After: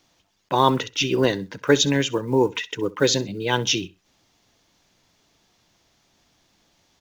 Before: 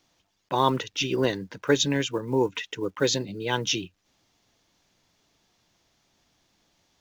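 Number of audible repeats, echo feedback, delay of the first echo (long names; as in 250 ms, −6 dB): 2, 24%, 65 ms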